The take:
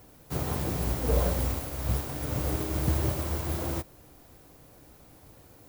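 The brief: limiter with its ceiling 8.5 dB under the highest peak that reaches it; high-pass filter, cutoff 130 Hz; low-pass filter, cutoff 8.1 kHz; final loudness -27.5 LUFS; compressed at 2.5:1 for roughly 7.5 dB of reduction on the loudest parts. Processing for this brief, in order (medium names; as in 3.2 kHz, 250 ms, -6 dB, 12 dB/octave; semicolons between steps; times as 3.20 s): high-pass 130 Hz; low-pass 8.1 kHz; compression 2.5:1, threshold -36 dBFS; trim +14.5 dB; peak limiter -18 dBFS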